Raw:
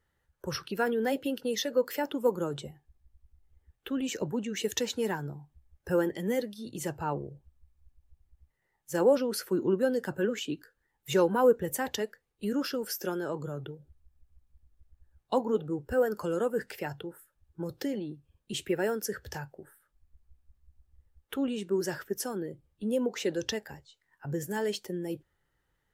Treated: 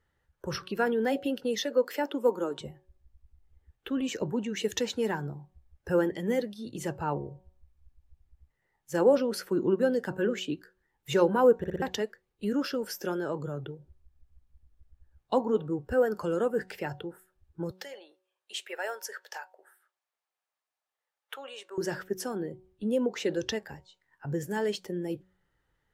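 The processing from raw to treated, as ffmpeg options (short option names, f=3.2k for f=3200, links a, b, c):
-filter_complex "[0:a]asettb=1/sr,asplit=3[a][b][c];[a]atrim=end=1.644[d];[b]atrim=start=1.64:end=2.61,asetpts=PTS-STARTPTS,afade=t=in:d=0.004:c=qsin,afade=t=out:st=0.966:d=0.004:c=qsin,highpass=f=230:w=0.5412,highpass=f=230:w=1.3066[e];[c]atrim=start=2.606[f];[d][e]acrossfade=d=0.004:c1=hsin:c2=qsin[g];[g][f]acrossfade=d=0.004:c1=qsin:c2=hsin,asettb=1/sr,asplit=3[h][i][j];[h]atrim=end=17.714[k];[i]atrim=start=17.71:end=21.78,asetpts=PTS-STARTPTS,afade=t=in:d=0.004:c=qsin,afade=t=out:st=4.066:d=0.004:c=qsin,highpass=f=620:w=0.5412,highpass=f=620:w=1.3066[l];[j]atrim=start=21.776[m];[k][l]acrossfade=d=0.004:c1=hsin:c2=qsin[n];[n][m]acrossfade=d=0.004:c1=qsin:c2=hsin,asplit=5[o][p][q][r][s];[o]atrim=end=11.642[t];[p]atrim=start=11.578:end=11.642[u];[q]atrim=start=11.578:end=11.642[v];[r]atrim=start=11.578:end=11.642[w];[s]atrim=start=11.818[x];[t][u]acrossfade=d=0.004:c1=hsin:c2=hsin[y];[y][v]acrossfade=d=0.004:c1=hsin:c2=hsin[z];[z][w]acrossfade=d=0.004:c1=hsin:c2=hsin[aa];[aa][x]acrossfade=d=0.004:c1=hsin:c2=hsin,highshelf=f=7.5k:g=-9.5,bandreject=f=185.9:t=h:w=4,bandreject=f=371.8:t=h:w=4,bandreject=f=557.7:t=h:w=4,bandreject=f=743.6:t=h:w=4,bandreject=f=929.5:t=h:w=4,bandreject=f=1.1154k:t=h:w=4,volume=1.5dB"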